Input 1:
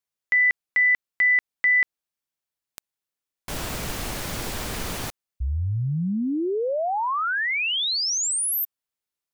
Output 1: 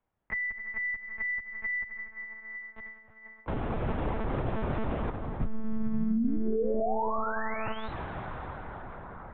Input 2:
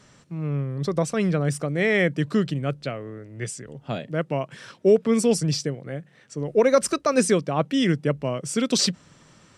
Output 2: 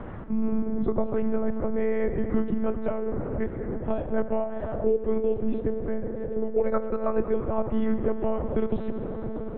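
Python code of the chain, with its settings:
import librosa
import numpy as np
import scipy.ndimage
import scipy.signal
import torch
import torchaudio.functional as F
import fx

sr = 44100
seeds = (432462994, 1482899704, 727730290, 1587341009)

y = fx.rider(x, sr, range_db=3, speed_s=0.5)
y = fx.rev_plate(y, sr, seeds[0], rt60_s=4.1, hf_ratio=0.5, predelay_ms=0, drr_db=7.0)
y = fx.lpc_monotone(y, sr, seeds[1], pitch_hz=220.0, order=10)
y = scipy.signal.sosfilt(scipy.signal.butter(2, 1000.0, 'lowpass', fs=sr, output='sos'), y)
y = fx.band_squash(y, sr, depth_pct=70)
y = y * librosa.db_to_amplitude(-2.0)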